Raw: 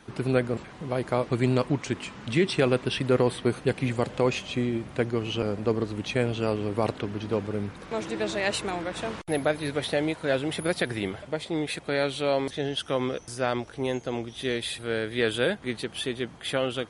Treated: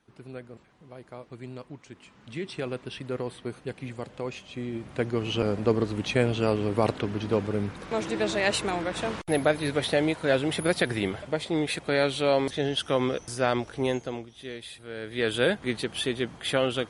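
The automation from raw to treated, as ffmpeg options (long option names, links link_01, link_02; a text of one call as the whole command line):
ffmpeg -i in.wav -af "volume=14dB,afade=type=in:start_time=1.91:duration=0.67:silence=0.446684,afade=type=in:start_time=4.51:duration=0.94:silence=0.251189,afade=type=out:start_time=13.88:duration=0.4:silence=0.251189,afade=type=in:start_time=14.94:duration=0.55:silence=0.251189" out.wav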